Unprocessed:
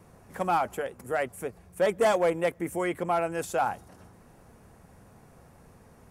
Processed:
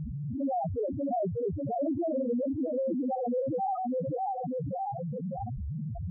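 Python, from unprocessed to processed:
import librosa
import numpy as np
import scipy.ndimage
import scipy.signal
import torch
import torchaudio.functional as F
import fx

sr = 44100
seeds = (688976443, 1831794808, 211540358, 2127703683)

p1 = np.minimum(x, 2.0 * 10.0 ** (-24.5 / 20.0) - x)
p2 = p1 + fx.echo_feedback(p1, sr, ms=594, feedback_pct=41, wet_db=-5.0, dry=0)
p3 = fx.wow_flutter(p2, sr, seeds[0], rate_hz=2.1, depth_cents=18.0)
p4 = 10.0 ** (-26.5 / 20.0) * np.tanh(p3 / 10.0 ** (-26.5 / 20.0))
p5 = p3 + (p4 * 10.0 ** (-5.5 / 20.0))
p6 = scipy.signal.sosfilt(scipy.signal.butter(4, 2300.0, 'lowpass', fs=sr, output='sos'), p5)
p7 = fx.low_shelf(p6, sr, hz=430.0, db=10.0)
p8 = fx.pitch_keep_formants(p7, sr, semitones=7.0)
p9 = scipy.signal.sosfilt(scipy.signal.butter(2, 54.0, 'highpass', fs=sr, output='sos'), p8)
p10 = fx.spec_topn(p9, sr, count=1)
y = fx.env_flatten(p10, sr, amount_pct=70)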